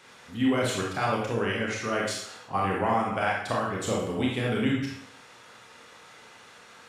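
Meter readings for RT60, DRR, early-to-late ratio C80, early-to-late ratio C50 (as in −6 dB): 0.70 s, −3.0 dB, 5.5 dB, 1.5 dB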